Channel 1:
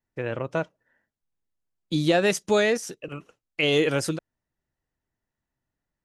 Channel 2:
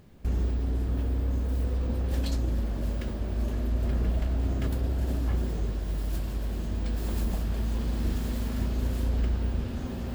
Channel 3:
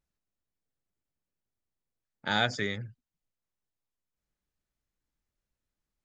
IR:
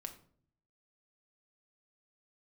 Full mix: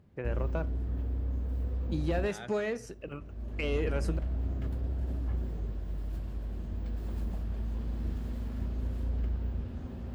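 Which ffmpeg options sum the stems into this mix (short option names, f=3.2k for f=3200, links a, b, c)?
-filter_complex "[0:a]bandreject=f=3.5k:w=5.4,aeval=exprs='clip(val(0),-1,0.158)':c=same,volume=-6dB,asplit=2[a][b];[b]volume=-7.5dB[c];[1:a]lowshelf=f=83:g=10.5,volume=-9dB[d];[2:a]volume=-11dB,asplit=2[e][f];[f]apad=whole_len=447585[g];[d][g]sidechaincompress=threshold=-59dB:ratio=8:attack=16:release=645[h];[a][e]amix=inputs=2:normalize=0,acompressor=threshold=-36dB:ratio=3,volume=0dB[i];[3:a]atrim=start_sample=2205[j];[c][j]afir=irnorm=-1:irlink=0[k];[h][i][k]amix=inputs=3:normalize=0,highpass=58,highshelf=f=3.6k:g=-11"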